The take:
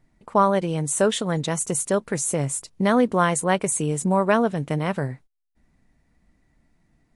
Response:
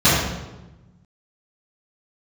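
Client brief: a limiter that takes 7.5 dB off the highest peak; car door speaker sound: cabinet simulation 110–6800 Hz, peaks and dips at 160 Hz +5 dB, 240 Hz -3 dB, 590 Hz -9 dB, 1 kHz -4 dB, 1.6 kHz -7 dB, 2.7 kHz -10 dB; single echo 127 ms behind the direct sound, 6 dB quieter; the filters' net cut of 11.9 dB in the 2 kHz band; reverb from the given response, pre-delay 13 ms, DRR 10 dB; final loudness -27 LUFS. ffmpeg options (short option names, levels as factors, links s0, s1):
-filter_complex "[0:a]equalizer=f=2000:t=o:g=-8,alimiter=limit=0.188:level=0:latency=1,aecho=1:1:127:0.501,asplit=2[s0][s1];[1:a]atrim=start_sample=2205,adelay=13[s2];[s1][s2]afir=irnorm=-1:irlink=0,volume=0.0188[s3];[s0][s3]amix=inputs=2:normalize=0,highpass=110,equalizer=f=160:t=q:w=4:g=5,equalizer=f=240:t=q:w=4:g=-3,equalizer=f=590:t=q:w=4:g=-9,equalizer=f=1000:t=q:w=4:g=-4,equalizer=f=1600:t=q:w=4:g=-7,equalizer=f=2700:t=q:w=4:g=-10,lowpass=f=6800:w=0.5412,lowpass=f=6800:w=1.3066,volume=0.708"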